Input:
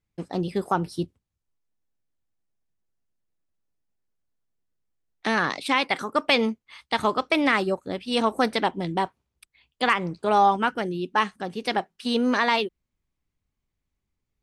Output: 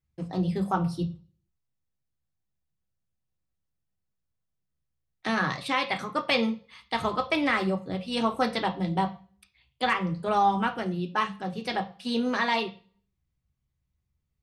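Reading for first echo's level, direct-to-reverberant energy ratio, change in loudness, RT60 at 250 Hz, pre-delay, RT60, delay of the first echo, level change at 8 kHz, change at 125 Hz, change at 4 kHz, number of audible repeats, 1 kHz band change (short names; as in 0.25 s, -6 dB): none, 3.5 dB, -3.5 dB, 0.60 s, 3 ms, 0.40 s, none, -5.0 dB, +2.5 dB, -4.0 dB, none, -3.5 dB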